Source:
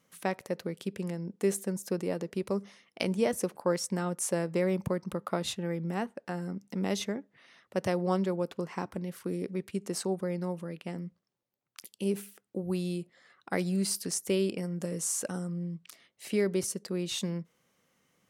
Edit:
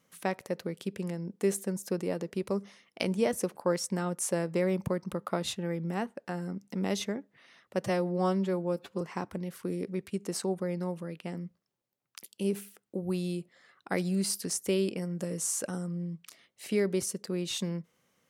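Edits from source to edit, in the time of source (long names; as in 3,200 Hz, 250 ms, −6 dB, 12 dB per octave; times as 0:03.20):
0:07.84–0:08.62: time-stretch 1.5×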